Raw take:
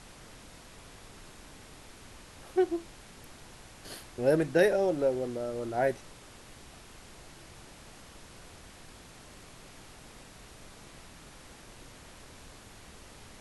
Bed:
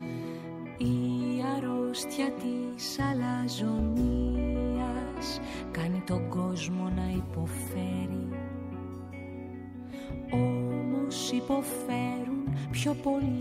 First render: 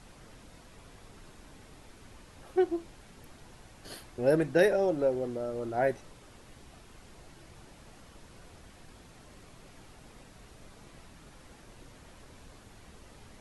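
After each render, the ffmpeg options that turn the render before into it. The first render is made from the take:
-af "afftdn=nr=6:nf=-52"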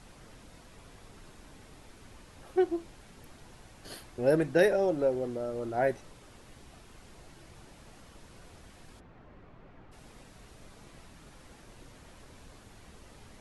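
-filter_complex "[0:a]asplit=3[s0][s1][s2];[s0]afade=t=out:st=8.99:d=0.02[s3];[s1]lowpass=1800,afade=t=in:st=8.99:d=0.02,afade=t=out:st=9.91:d=0.02[s4];[s2]afade=t=in:st=9.91:d=0.02[s5];[s3][s4][s5]amix=inputs=3:normalize=0"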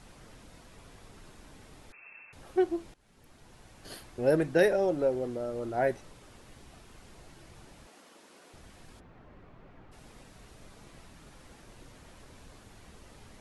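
-filter_complex "[0:a]asettb=1/sr,asplit=3[s0][s1][s2];[s0]atrim=end=1.924[s3];[s1]atrim=start=1.92:end=2.33,asetpts=PTS-STARTPTS,afade=t=in:d=0.004:c=qsin,afade=t=out:st=0.406:d=0.004:c=qsin,lowpass=f=2300:t=q:w=0.5098,lowpass=f=2300:t=q:w=0.6013,lowpass=f=2300:t=q:w=0.9,lowpass=f=2300:t=q:w=2.563,afreqshift=-2700[s4];[s2]atrim=start=2.326[s5];[s3][s4]acrossfade=d=0.004:c1=hsin:c2=qsin[s6];[s6][s5]acrossfade=d=0.004:c1=qsin:c2=hsin,asettb=1/sr,asplit=3[s7][s8][s9];[s7]atrim=end=7.874[s10];[s8]atrim=start=7.87:end=8.54,asetpts=PTS-STARTPTS,afade=t=in:d=0.004:c=qsin,afade=t=out:st=0.666:d=0.004:c=qsin,highpass=f=240:w=0.5412,highpass=f=240:w=1.3066[s11];[s9]atrim=start=8.536[s12];[s10][s11]acrossfade=d=0.004:c1=hsin:c2=qsin[s13];[s13][s12]acrossfade=d=0.004:c1=qsin:c2=hsin,asplit=2[s14][s15];[s14]atrim=end=2.94,asetpts=PTS-STARTPTS,afade=t=out:st=2.936:d=0.004:c=hsin:silence=0.112202[s16];[s15]atrim=start=2.94,asetpts=PTS-STARTPTS,afade=t=in:d=1.2:c=qsin:silence=0.112202[s17];[s16][s17]concat=n=2:v=0:a=1"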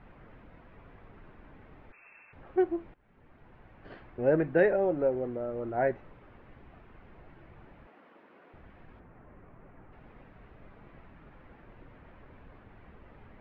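-af "lowpass=f=2300:w=0.5412,lowpass=f=2300:w=1.3066"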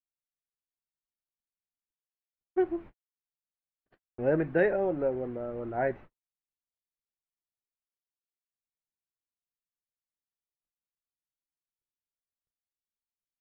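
-af "agate=range=0.00112:threshold=0.00708:ratio=16:detection=peak,equalizer=f=550:w=1.5:g=-2"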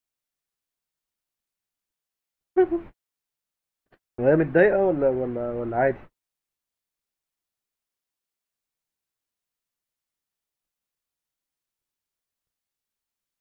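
-af "volume=2.37"

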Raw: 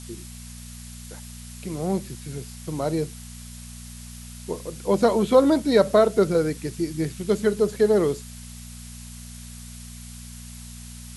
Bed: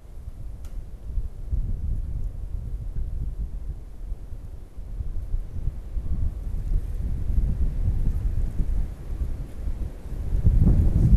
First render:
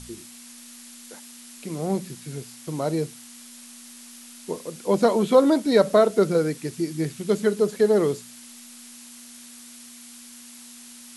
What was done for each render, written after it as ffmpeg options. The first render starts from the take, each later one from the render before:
-af "bandreject=f=60:t=h:w=4,bandreject=f=120:t=h:w=4,bandreject=f=180:t=h:w=4"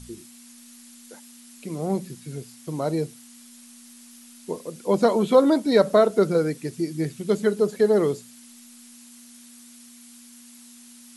-af "afftdn=nr=6:nf=-45"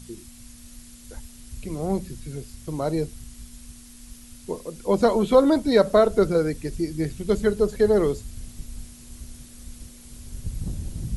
-filter_complex "[1:a]volume=0.237[s0];[0:a][s0]amix=inputs=2:normalize=0"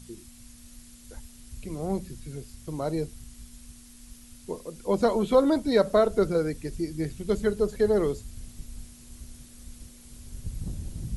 -af "volume=0.631"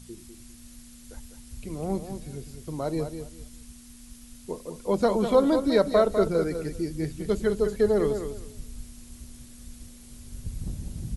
-af "aecho=1:1:200|400|600:0.376|0.0752|0.015"

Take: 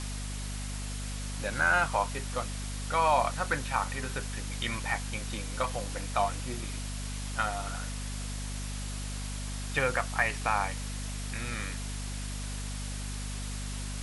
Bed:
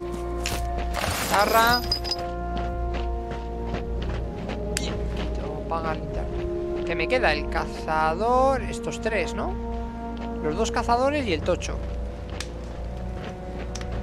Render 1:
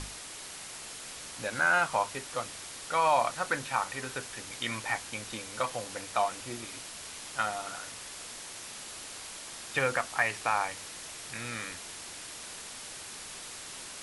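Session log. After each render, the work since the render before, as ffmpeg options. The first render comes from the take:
-af "bandreject=f=50:t=h:w=6,bandreject=f=100:t=h:w=6,bandreject=f=150:t=h:w=6,bandreject=f=200:t=h:w=6,bandreject=f=250:t=h:w=6"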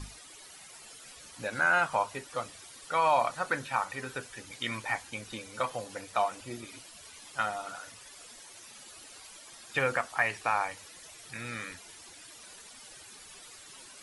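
-af "afftdn=nr=12:nf=-44"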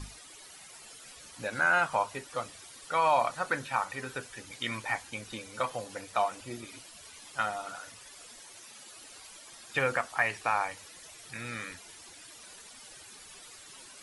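-filter_complex "[0:a]asettb=1/sr,asplit=3[s0][s1][s2];[s0]atrim=end=8.604[s3];[s1]atrim=start=8.6:end=9.02,asetpts=PTS-STARTPTS,afade=t=in:d=0.004:c=qsin,afade=t=out:st=0.416:d=0.004:c=qsin,highpass=f=130:p=1[s4];[s2]atrim=start=9.016[s5];[s3][s4]acrossfade=d=0.004:c1=hsin:c2=qsin[s6];[s6][s5]acrossfade=d=0.004:c1=qsin:c2=hsin"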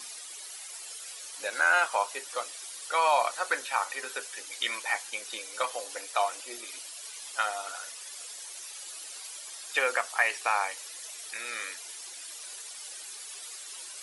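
-af "highpass=f=380:w=0.5412,highpass=f=380:w=1.3066,highshelf=f=3000:g=10"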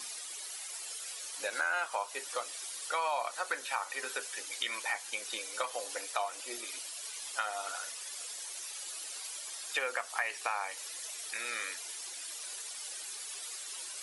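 -af "acompressor=threshold=0.0251:ratio=3"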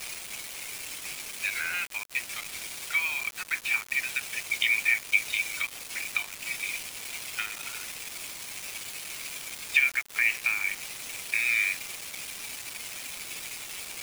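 -af "highpass=f=2300:t=q:w=7.1,acrusher=bits=5:mix=0:aa=0.000001"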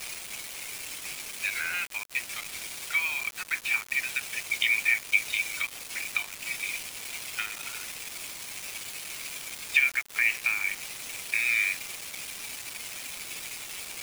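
-af anull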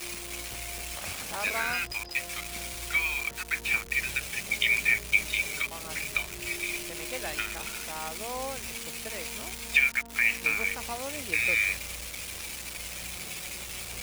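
-filter_complex "[1:a]volume=0.158[s0];[0:a][s0]amix=inputs=2:normalize=0"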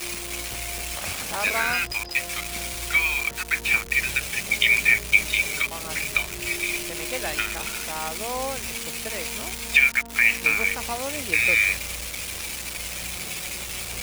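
-af "volume=2,alimiter=limit=0.708:level=0:latency=1"

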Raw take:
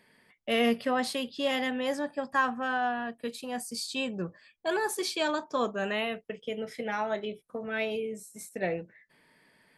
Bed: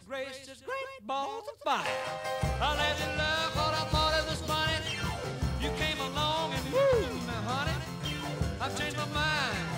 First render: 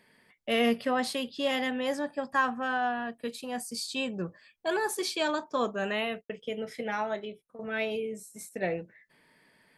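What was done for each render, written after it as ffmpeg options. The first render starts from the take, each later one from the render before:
-filter_complex "[0:a]asplit=3[s0][s1][s2];[s0]afade=t=out:st=5.49:d=0.02[s3];[s1]agate=range=0.0224:threshold=0.00398:ratio=3:release=100:detection=peak,afade=t=in:st=5.49:d=0.02,afade=t=out:st=6.35:d=0.02[s4];[s2]afade=t=in:st=6.35:d=0.02[s5];[s3][s4][s5]amix=inputs=3:normalize=0,asplit=2[s6][s7];[s6]atrim=end=7.59,asetpts=PTS-STARTPTS,afade=t=out:st=7:d=0.59:silence=0.223872[s8];[s7]atrim=start=7.59,asetpts=PTS-STARTPTS,afade=t=in:d=0.004:c=hsin:silence=0.223872[s9];[s8][s9]concat=n=2:v=0:a=1"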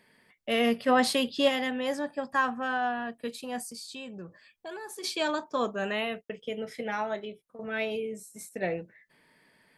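-filter_complex "[0:a]asplit=3[s0][s1][s2];[s0]afade=t=out:st=0.87:d=0.02[s3];[s1]acontrast=45,afade=t=in:st=0.87:d=0.02,afade=t=out:st=1.48:d=0.02[s4];[s2]afade=t=in:st=1.48:d=0.02[s5];[s3][s4][s5]amix=inputs=3:normalize=0,asettb=1/sr,asplit=3[s6][s7][s8];[s6]atrim=end=3.714[s9];[s7]atrim=start=3.71:end=5.04,asetpts=PTS-STARTPTS,afade=t=in:d=0.004:c=qsin,afade=t=out:st=1.326:d=0.004:c=qsin,acompressor=threshold=0.00794:ratio=2.5:attack=3.2:release=140:knee=1:detection=peak[s10];[s8]atrim=start=5.036[s11];[s9][s10]acrossfade=d=0.004:c1=hsin:c2=qsin[s12];[s12][s11]acrossfade=d=0.004:c1=qsin:c2=hsin"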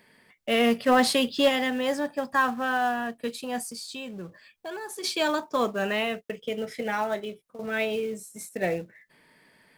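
-filter_complex "[0:a]asplit=2[s0][s1];[s1]acrusher=bits=3:mode=log:mix=0:aa=0.000001,volume=0.562[s2];[s0][s2]amix=inputs=2:normalize=0,asoftclip=type=tanh:threshold=0.299"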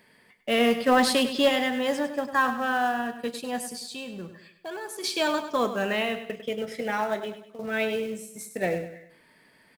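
-af "aecho=1:1:100|200|300|400:0.282|0.118|0.0497|0.0209"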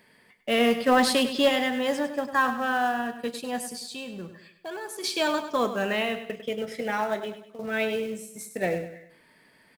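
-af anull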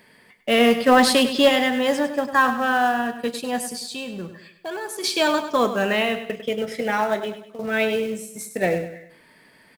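-af "volume=1.88"

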